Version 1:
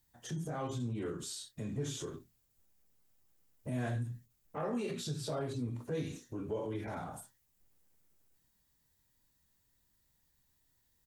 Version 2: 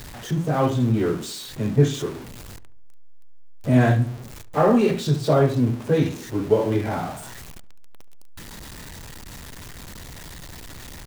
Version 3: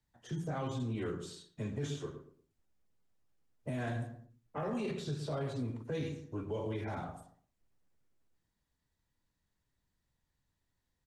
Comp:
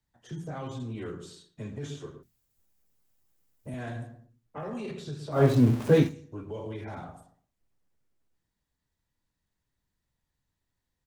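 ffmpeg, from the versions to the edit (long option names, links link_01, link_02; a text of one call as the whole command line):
ffmpeg -i take0.wav -i take1.wav -i take2.wav -filter_complex "[2:a]asplit=3[link_01][link_02][link_03];[link_01]atrim=end=2.232[link_04];[0:a]atrim=start=2.228:end=3.742[link_05];[link_02]atrim=start=3.738:end=5.47[link_06];[1:a]atrim=start=5.31:end=6.14[link_07];[link_03]atrim=start=5.98[link_08];[link_04][link_05]acrossfade=duration=0.004:curve1=hsin:curve2=hsin[link_09];[link_09][link_06]acrossfade=duration=0.004:curve1=hsin:curve2=hsin[link_10];[link_10][link_07]acrossfade=duration=0.16:curve1=tri:curve2=tri[link_11];[link_11][link_08]acrossfade=duration=0.16:curve1=tri:curve2=tri" out.wav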